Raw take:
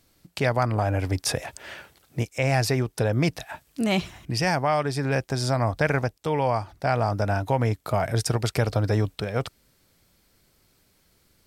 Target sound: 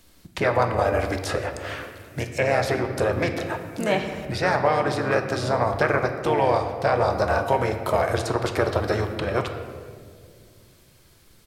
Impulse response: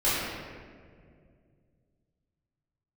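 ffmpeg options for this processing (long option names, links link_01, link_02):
-filter_complex "[0:a]asplit=3[link_01][link_02][link_03];[link_02]asetrate=33038,aresample=44100,atempo=1.33484,volume=-7dB[link_04];[link_03]asetrate=35002,aresample=44100,atempo=1.25992,volume=-6dB[link_05];[link_01][link_04][link_05]amix=inputs=3:normalize=0,acrossover=split=400|2000[link_06][link_07][link_08];[link_06]acompressor=threshold=-36dB:ratio=4[link_09];[link_07]acompressor=threshold=-23dB:ratio=4[link_10];[link_08]acompressor=threshold=-42dB:ratio=4[link_11];[link_09][link_10][link_11]amix=inputs=3:normalize=0,asplit=2[link_12][link_13];[1:a]atrim=start_sample=2205[link_14];[link_13][link_14]afir=irnorm=-1:irlink=0,volume=-19dB[link_15];[link_12][link_15]amix=inputs=2:normalize=0,volume=4dB"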